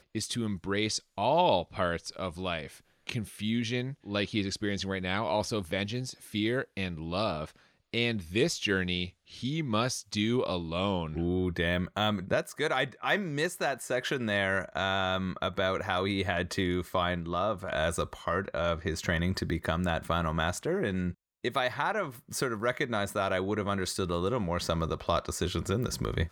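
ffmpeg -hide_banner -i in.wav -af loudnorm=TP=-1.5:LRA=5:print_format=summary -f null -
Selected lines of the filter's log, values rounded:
Input Integrated:    -31.0 LUFS
Input True Peak:     -12.2 dBTP
Input LRA:             2.0 LU
Input Threshold:     -41.0 LUFS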